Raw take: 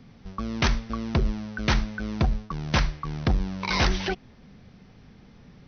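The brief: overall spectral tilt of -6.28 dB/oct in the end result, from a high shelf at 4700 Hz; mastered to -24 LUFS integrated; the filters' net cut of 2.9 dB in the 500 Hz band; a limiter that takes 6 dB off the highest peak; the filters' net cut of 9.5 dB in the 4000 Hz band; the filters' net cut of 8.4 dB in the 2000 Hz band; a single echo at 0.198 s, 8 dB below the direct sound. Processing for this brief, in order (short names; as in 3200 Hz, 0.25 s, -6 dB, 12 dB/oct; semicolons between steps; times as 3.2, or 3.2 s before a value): bell 500 Hz -3.5 dB; bell 2000 Hz -8 dB; bell 4000 Hz -5.5 dB; high shelf 4700 Hz -8 dB; limiter -18.5 dBFS; echo 0.198 s -8 dB; gain +7 dB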